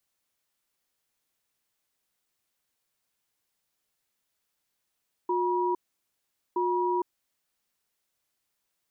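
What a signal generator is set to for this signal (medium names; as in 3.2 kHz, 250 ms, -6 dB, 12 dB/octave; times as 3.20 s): cadence 359 Hz, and 963 Hz, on 0.46 s, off 0.81 s, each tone -26.5 dBFS 2.28 s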